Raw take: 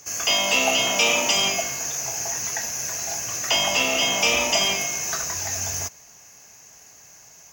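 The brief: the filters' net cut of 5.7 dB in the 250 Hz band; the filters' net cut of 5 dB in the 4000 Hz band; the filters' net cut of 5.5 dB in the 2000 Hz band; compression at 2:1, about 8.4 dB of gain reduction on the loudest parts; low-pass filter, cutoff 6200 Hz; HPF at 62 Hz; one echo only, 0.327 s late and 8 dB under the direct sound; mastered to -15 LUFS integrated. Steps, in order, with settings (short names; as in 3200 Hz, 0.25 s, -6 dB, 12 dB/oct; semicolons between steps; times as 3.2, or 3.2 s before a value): HPF 62 Hz; LPF 6200 Hz; bell 250 Hz -7 dB; bell 2000 Hz -5.5 dB; bell 4000 Hz -4 dB; compressor 2:1, threshold -35 dBFS; echo 0.327 s -8 dB; gain +16.5 dB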